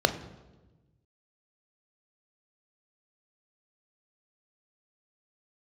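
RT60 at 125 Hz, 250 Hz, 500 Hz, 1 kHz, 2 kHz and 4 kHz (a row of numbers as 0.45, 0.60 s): 1.9, 1.5, 1.3, 1.0, 0.90, 0.90 s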